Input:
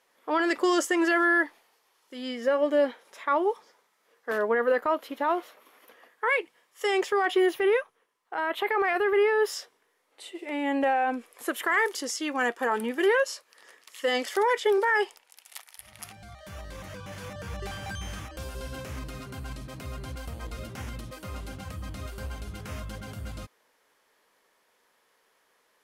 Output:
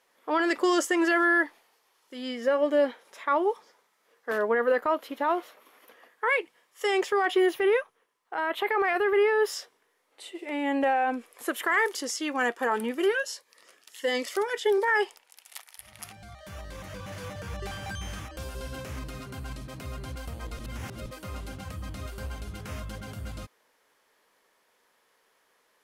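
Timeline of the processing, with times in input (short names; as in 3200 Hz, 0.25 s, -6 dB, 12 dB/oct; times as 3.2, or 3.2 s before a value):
12.94–14.88 cascading phaser rising 1.5 Hz
16.69–17.16 echo throw 0.24 s, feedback 10%, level -6.5 dB
20.59–21.06 reverse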